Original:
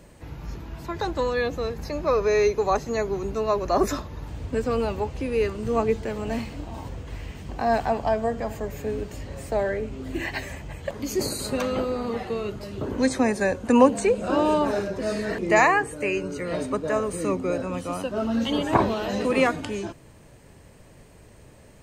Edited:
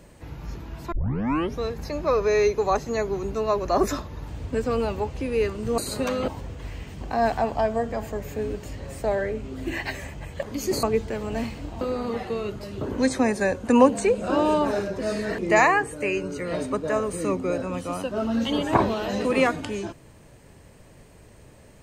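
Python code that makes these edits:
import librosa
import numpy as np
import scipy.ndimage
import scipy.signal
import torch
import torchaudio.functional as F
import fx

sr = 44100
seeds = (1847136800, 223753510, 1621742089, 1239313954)

y = fx.edit(x, sr, fx.tape_start(start_s=0.92, length_s=0.7),
    fx.swap(start_s=5.78, length_s=0.98, other_s=11.31, other_length_s=0.5), tone=tone)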